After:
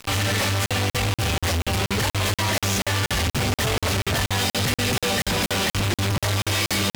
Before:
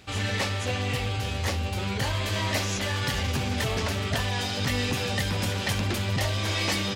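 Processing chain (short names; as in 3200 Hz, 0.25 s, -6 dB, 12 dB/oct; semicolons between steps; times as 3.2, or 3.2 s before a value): 5.03–5.66 bell 110 Hz -12 dB 0.53 oct; fuzz box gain 50 dB, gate -45 dBFS; crackling interface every 0.24 s, samples 2048, zero, from 0.66; gain -8 dB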